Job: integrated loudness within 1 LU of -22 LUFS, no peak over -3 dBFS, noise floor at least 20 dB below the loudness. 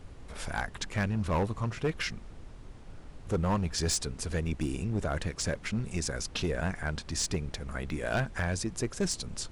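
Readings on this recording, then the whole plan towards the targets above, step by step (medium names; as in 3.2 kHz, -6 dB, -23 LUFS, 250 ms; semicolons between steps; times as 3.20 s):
clipped samples 1.4%; clipping level -23.0 dBFS; noise floor -48 dBFS; noise floor target -53 dBFS; loudness -32.5 LUFS; peak level -23.0 dBFS; loudness target -22.0 LUFS
-> clip repair -23 dBFS; noise print and reduce 6 dB; trim +10.5 dB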